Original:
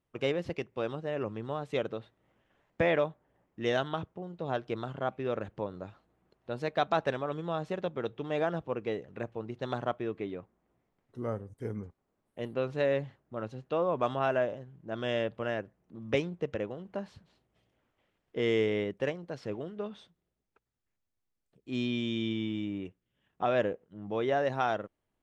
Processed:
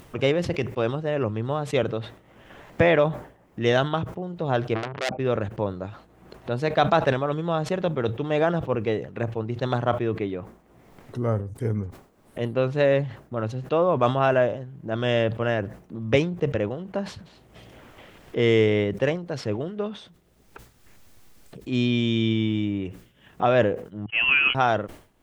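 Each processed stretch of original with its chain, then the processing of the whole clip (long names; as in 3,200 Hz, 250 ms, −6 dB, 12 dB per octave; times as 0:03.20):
0:04.75–0:05.19: spectral envelope exaggerated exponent 2 + parametric band 330 Hz +5 dB 1.4 octaves + saturating transformer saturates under 3,600 Hz
0:24.06–0:24.55: spike at every zero crossing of −26 dBFS + noise gate −33 dBFS, range −53 dB + voice inversion scrambler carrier 3,100 Hz
whole clip: upward compression, threshold −38 dBFS; dynamic equaliser 110 Hz, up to +6 dB, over −51 dBFS, Q 1.8; level that may fall only so fast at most 120 dB per second; level +8 dB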